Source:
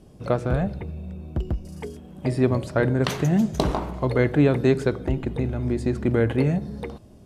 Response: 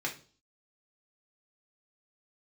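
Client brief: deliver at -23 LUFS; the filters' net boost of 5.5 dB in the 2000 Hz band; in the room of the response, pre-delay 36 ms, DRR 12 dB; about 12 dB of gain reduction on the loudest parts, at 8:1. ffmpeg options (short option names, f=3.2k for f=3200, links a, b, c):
-filter_complex "[0:a]equalizer=f=2k:t=o:g=7,acompressor=threshold=-26dB:ratio=8,asplit=2[a][b];[1:a]atrim=start_sample=2205,adelay=36[c];[b][c]afir=irnorm=-1:irlink=0,volume=-17dB[d];[a][d]amix=inputs=2:normalize=0,volume=9dB"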